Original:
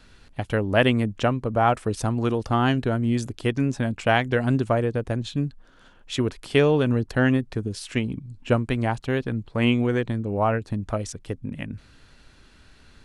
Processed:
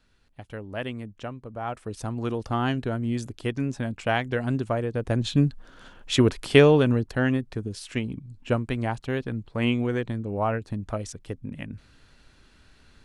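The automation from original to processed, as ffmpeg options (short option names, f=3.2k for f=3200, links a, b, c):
-af "volume=5dB,afade=t=in:st=1.6:d=0.76:silence=0.354813,afade=t=in:st=4.91:d=0.43:silence=0.334965,afade=t=out:st=6.42:d=0.7:silence=0.375837"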